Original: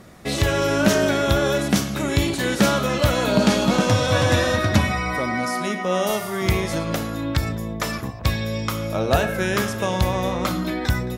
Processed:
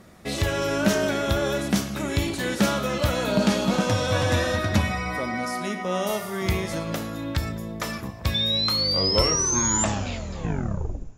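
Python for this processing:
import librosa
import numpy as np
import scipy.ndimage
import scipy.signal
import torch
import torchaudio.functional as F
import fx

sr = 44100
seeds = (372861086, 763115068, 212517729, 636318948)

y = fx.tape_stop_end(x, sr, length_s=2.49)
y = fx.spec_paint(y, sr, seeds[0], shape='rise', start_s=8.34, length_s=1.51, low_hz=3500.0, high_hz=7300.0, level_db=-20.0)
y = fx.rev_double_slope(y, sr, seeds[1], early_s=0.23, late_s=2.9, knee_db=-18, drr_db=12.5)
y = y * 10.0 ** (-4.5 / 20.0)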